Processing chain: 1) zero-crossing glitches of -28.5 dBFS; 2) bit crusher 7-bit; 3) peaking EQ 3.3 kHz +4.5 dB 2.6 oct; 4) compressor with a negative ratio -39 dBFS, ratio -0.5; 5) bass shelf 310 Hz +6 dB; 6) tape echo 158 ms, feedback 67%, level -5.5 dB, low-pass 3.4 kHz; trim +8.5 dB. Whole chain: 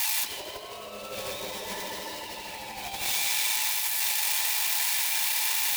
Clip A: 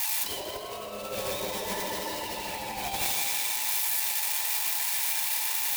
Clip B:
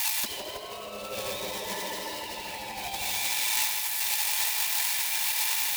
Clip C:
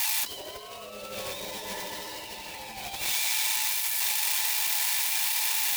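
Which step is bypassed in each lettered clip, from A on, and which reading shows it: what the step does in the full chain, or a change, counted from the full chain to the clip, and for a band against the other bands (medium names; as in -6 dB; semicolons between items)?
3, 4 kHz band -6.0 dB; 2, distortion -12 dB; 6, echo-to-direct -20.5 dB to none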